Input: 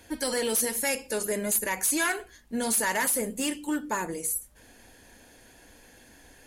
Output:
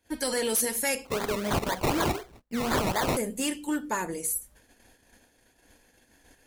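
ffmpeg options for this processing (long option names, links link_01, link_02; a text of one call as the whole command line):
ffmpeg -i in.wav -filter_complex "[0:a]agate=range=-21dB:threshold=-52dB:ratio=16:detection=peak,asettb=1/sr,asplit=3[link_01][link_02][link_03];[link_01]atrim=end=1.054[link_04];[link_02]atrim=start=1.05:end=3.17,asetpts=PTS-STARTPTS,afade=type=in:duration=0.004:curve=qsin,afade=type=out:start_time=2.116:duration=0.004:curve=qsin,acrusher=samples=22:mix=1:aa=0.000001:lfo=1:lforange=13.2:lforate=4[link_05];[link_03]atrim=start=3.166[link_06];[link_04][link_05]acrossfade=duration=0.004:curve1=hsin:curve2=qsin[link_07];[link_07][link_06]acrossfade=duration=0.004:curve1=qsin:curve2=hsin" out.wav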